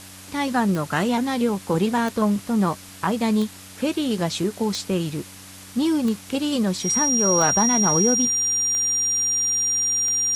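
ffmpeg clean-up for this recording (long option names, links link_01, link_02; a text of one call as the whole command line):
ffmpeg -i in.wav -af "adeclick=threshold=4,bandreject=frequency=94.5:width_type=h:width=4,bandreject=frequency=189:width_type=h:width=4,bandreject=frequency=283.5:width_type=h:width=4,bandreject=frequency=5700:width=30,afwtdn=0.0089" out.wav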